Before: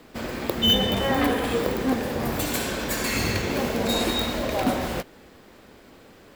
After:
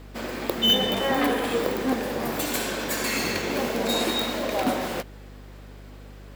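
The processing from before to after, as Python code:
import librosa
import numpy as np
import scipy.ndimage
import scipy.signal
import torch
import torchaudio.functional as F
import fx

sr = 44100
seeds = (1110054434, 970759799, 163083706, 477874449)

y = scipy.signal.sosfilt(scipy.signal.butter(2, 210.0, 'highpass', fs=sr, output='sos'), x)
y = fx.add_hum(y, sr, base_hz=50, snr_db=17)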